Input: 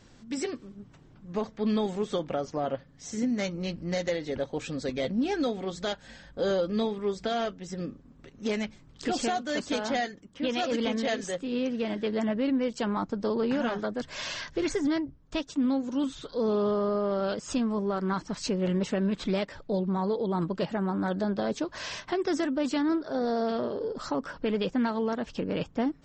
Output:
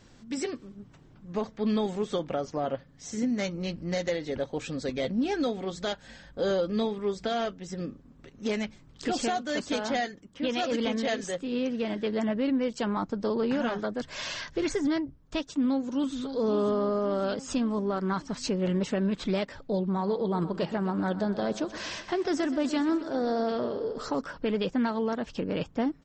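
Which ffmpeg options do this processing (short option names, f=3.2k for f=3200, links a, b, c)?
-filter_complex "[0:a]asplit=2[a][b];[b]afade=t=in:st=15.53:d=0.01,afade=t=out:st=16.14:d=0.01,aecho=0:1:550|1100|1650|2200|2750|3300|3850:0.334965|0.200979|0.120588|0.0723525|0.0434115|0.0260469|0.0156281[c];[a][c]amix=inputs=2:normalize=0,asplit=3[d][e][f];[d]afade=t=out:st=19.98:d=0.02[g];[e]aecho=1:1:125|250|375|500|625|750:0.188|0.111|0.0656|0.0387|0.0228|0.0135,afade=t=in:st=19.98:d=0.02,afade=t=out:st=24.2:d=0.02[h];[f]afade=t=in:st=24.2:d=0.02[i];[g][h][i]amix=inputs=3:normalize=0"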